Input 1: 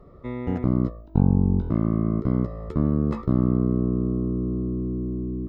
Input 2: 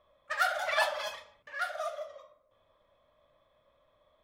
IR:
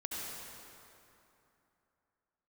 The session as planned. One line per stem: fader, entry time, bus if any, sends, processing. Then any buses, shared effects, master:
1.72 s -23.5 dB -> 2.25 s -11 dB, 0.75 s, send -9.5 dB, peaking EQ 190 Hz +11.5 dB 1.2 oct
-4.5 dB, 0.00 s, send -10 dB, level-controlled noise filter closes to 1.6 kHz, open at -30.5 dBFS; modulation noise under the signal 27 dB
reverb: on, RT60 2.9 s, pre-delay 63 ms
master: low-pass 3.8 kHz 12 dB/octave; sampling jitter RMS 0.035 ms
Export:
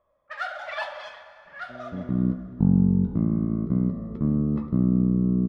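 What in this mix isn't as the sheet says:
stem 1: entry 0.75 s -> 1.45 s; master: missing sampling jitter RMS 0.035 ms

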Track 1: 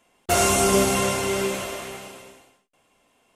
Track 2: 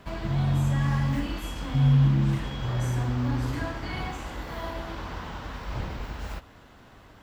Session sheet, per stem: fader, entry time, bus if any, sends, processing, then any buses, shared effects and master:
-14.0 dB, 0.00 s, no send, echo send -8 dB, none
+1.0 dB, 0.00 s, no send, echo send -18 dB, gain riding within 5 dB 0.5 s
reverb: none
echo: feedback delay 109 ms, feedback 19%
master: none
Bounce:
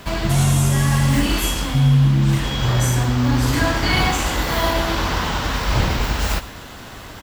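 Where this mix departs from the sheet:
stem 2 +1.0 dB -> +9.0 dB; master: extra treble shelf 3.3 kHz +11 dB

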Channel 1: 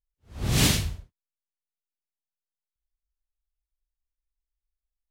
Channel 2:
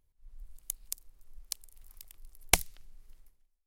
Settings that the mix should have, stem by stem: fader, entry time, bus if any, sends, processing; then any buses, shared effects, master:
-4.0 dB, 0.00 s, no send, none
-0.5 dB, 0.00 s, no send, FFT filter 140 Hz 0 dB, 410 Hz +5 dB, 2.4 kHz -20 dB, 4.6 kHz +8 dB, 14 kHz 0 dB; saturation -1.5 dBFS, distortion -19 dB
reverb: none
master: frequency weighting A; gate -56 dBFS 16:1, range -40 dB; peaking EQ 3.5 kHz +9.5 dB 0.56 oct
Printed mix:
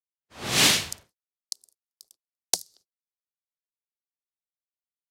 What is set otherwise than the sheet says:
stem 1 -4.0 dB -> +5.0 dB; master: missing peaking EQ 3.5 kHz +9.5 dB 0.56 oct

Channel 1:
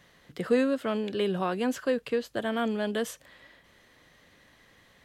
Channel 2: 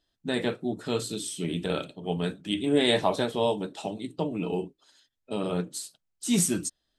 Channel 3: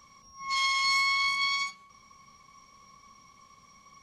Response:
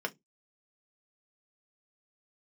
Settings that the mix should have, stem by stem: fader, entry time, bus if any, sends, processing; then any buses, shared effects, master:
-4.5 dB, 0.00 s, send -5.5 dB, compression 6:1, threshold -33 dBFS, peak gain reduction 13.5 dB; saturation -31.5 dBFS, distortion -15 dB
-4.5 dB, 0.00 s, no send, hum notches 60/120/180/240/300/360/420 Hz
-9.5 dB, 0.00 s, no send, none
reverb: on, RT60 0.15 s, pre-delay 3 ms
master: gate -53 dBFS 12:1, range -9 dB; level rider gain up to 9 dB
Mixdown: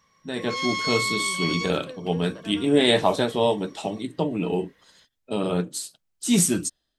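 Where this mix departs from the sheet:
stem 1 -4.5 dB -> -16.5 dB; stem 2: missing hum notches 60/120/180/240/300/360/420 Hz; master: missing gate -53 dBFS 12:1, range -9 dB

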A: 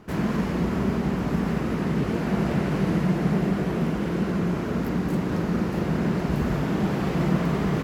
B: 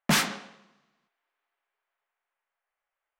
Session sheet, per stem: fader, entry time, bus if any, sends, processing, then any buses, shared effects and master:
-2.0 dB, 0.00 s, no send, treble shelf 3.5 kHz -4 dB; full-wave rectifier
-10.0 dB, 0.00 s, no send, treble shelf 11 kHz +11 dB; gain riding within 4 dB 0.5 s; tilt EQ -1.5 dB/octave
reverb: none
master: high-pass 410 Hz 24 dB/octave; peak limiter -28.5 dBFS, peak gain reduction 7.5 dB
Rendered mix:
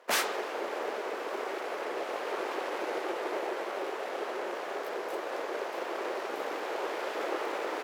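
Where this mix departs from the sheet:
stem B -10.0 dB -> -3.5 dB; master: missing peak limiter -28.5 dBFS, peak gain reduction 7.5 dB

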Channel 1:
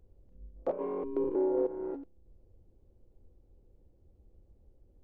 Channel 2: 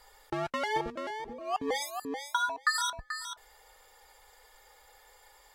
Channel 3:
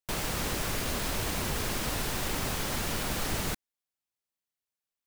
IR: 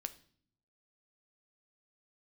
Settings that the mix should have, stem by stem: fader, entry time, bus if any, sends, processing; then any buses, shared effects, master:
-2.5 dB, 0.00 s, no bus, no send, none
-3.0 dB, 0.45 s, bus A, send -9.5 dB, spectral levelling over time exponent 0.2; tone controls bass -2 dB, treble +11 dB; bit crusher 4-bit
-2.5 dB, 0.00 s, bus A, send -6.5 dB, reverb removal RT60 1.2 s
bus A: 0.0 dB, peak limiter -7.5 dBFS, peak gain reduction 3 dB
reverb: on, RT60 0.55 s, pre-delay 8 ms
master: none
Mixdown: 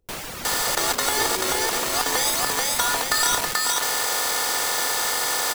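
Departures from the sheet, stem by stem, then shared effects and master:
stem 3: send -6.5 dB -> -0.5 dB; master: extra bass shelf 200 Hz -9 dB

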